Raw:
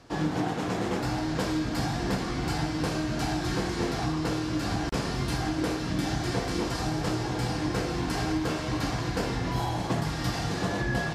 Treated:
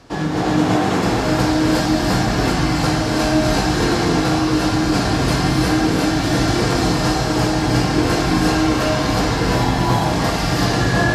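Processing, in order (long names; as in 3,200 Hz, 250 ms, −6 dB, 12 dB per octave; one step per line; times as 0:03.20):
reverb whose tail is shaped and stops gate 390 ms rising, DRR −4 dB
level +7 dB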